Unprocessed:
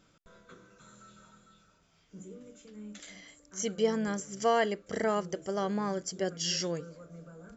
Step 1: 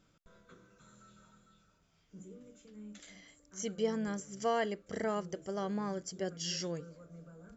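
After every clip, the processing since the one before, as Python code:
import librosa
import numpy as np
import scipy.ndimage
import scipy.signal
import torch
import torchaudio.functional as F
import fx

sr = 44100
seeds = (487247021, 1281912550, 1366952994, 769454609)

y = fx.low_shelf(x, sr, hz=200.0, db=5.0)
y = y * 10.0 ** (-6.0 / 20.0)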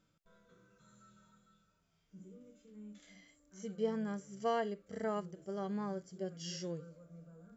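y = fx.hpss(x, sr, part='percussive', gain_db=-16)
y = y * 10.0 ** (-2.0 / 20.0)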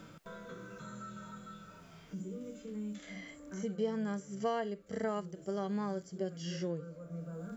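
y = fx.band_squash(x, sr, depth_pct=70)
y = y * 10.0 ** (3.5 / 20.0)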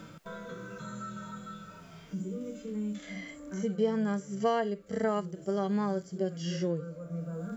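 y = fx.hpss(x, sr, part='harmonic', gain_db=6)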